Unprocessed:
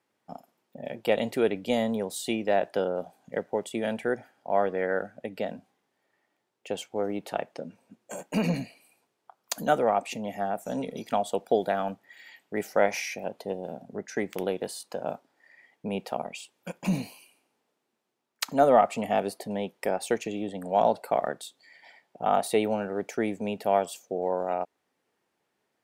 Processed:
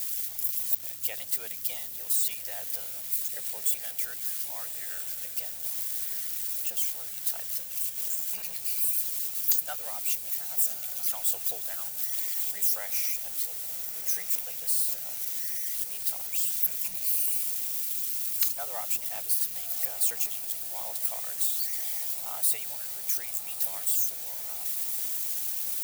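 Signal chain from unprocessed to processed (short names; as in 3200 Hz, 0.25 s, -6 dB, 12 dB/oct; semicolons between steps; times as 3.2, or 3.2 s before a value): switching spikes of -21 dBFS; high shelf 11000 Hz +12 dB; harmonic-percussive split harmonic -15 dB; passive tone stack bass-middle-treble 10-0-10; buzz 100 Hz, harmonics 4, -59 dBFS -5 dB/oct; on a send: diffused feedback echo 1.242 s, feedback 73%, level -11 dB; on the sum: gain -4 dB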